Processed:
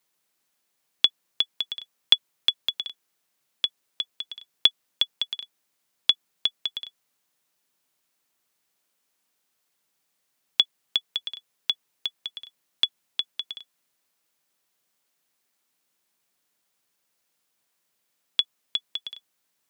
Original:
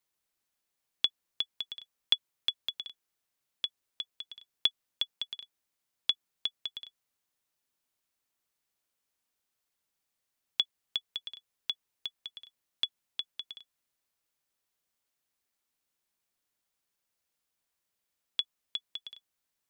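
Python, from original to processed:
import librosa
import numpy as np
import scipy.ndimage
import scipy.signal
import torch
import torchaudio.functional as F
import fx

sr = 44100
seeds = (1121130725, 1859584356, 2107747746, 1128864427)

y = scipy.signal.sosfilt(scipy.signal.butter(4, 120.0, 'highpass', fs=sr, output='sos'), x)
y = y * 10.0 ** (8.5 / 20.0)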